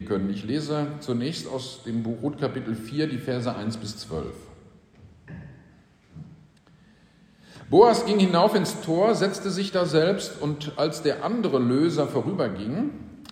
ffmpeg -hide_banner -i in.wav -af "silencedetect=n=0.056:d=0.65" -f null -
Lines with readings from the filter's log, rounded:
silence_start: 4.27
silence_end: 7.73 | silence_duration: 3.46